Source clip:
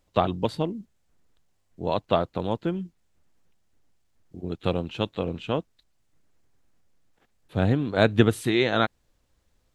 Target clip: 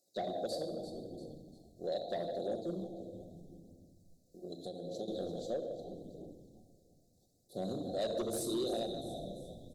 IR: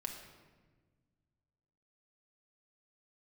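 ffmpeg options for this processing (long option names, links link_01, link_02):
-filter_complex "[0:a]highpass=340,asplit=5[link_01][link_02][link_03][link_04][link_05];[link_02]adelay=344,afreqshift=-85,volume=-14dB[link_06];[link_03]adelay=688,afreqshift=-170,volume=-21.7dB[link_07];[link_04]adelay=1032,afreqshift=-255,volume=-29.5dB[link_08];[link_05]adelay=1376,afreqshift=-340,volume=-37.2dB[link_09];[link_01][link_06][link_07][link_08][link_09]amix=inputs=5:normalize=0[link_10];[1:a]atrim=start_sample=2205,asetrate=38367,aresample=44100[link_11];[link_10][link_11]afir=irnorm=-1:irlink=0,asettb=1/sr,asplit=3[link_12][link_13][link_14];[link_12]atrim=end=2.844[link_15];[link_13]atrim=start=2.84:end=5.08,asetpts=PTS-STARTPTS,afade=type=in:duration=0.004:curve=qsin,afade=type=out:start_time=2.236:duration=0.004:curve=qsin,acompressor=threshold=-35dB:ratio=5[link_16];[link_14]atrim=start=5.076[link_17];[link_15][link_16]acrossfade=duration=0.004:curve1=hsin:curve2=qsin[link_18];[link_18][link_17]acrossfade=duration=0.004:curve1=qsin:curve2=hsin,asuperstop=centerf=1700:order=20:qfactor=0.55,highshelf=frequency=2900:gain=9.5,asoftclip=type=tanh:threshold=-20dB,aphaser=in_gain=1:out_gain=1:delay=2:decay=0.3:speed=0.8:type=triangular,alimiter=level_in=0.5dB:limit=-24dB:level=0:latency=1:release=419,volume=-0.5dB,volume=-4dB"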